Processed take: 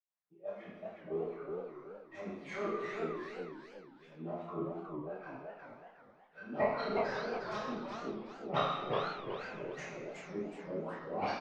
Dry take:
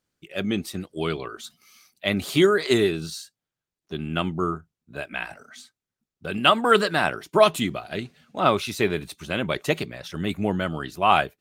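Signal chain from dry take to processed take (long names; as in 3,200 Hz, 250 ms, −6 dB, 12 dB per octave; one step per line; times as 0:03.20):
one scale factor per block 5 bits
LFO wah 2.6 Hz 330–2,100 Hz, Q 4.8
harmonic generator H 3 −7 dB, 8 −43 dB, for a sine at −12.5 dBFS
low-pass filter 8,400 Hz
double-tracking delay 29 ms −5 dB
convolution reverb RT60 1.0 s, pre-delay 77 ms
feedback echo with a swinging delay time 367 ms, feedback 35%, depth 203 cents, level −4 dB
level +9.5 dB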